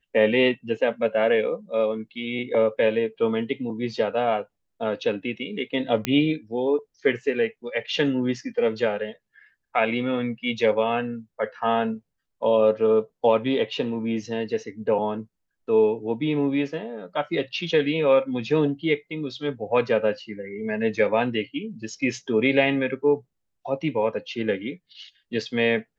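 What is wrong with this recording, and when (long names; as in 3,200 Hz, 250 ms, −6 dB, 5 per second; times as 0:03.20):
0:06.05: click −8 dBFS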